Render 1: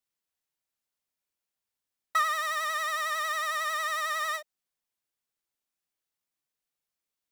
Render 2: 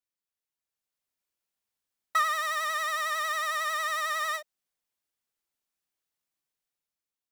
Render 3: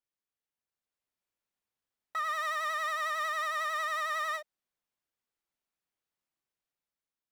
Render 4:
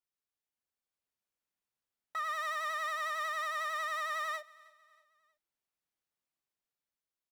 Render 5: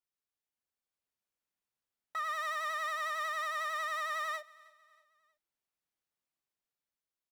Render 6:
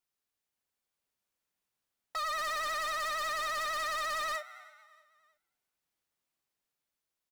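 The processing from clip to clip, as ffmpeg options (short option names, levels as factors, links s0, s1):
-af "dynaudnorm=f=240:g=7:m=2.24,volume=0.473"
-af "highshelf=f=3800:g=-9,alimiter=level_in=1.26:limit=0.0631:level=0:latency=1:release=136,volume=0.794"
-af "aecho=1:1:317|634|951:0.0708|0.0304|0.0131,volume=0.708"
-af anull
-filter_complex "[0:a]asplit=3[s0][s1][s2];[s1]adelay=224,afreqshift=120,volume=0.0794[s3];[s2]adelay=448,afreqshift=240,volume=0.0279[s4];[s0][s3][s4]amix=inputs=3:normalize=0,aeval=exprs='0.02*(abs(mod(val(0)/0.02+3,4)-2)-1)':c=same,volume=1.68"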